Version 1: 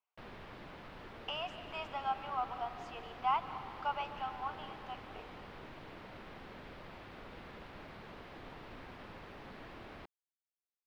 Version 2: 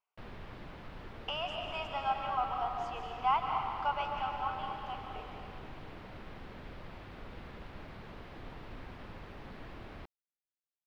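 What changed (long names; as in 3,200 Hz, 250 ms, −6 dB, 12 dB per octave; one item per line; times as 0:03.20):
speech: send +11.0 dB
master: add low-shelf EQ 140 Hz +9.5 dB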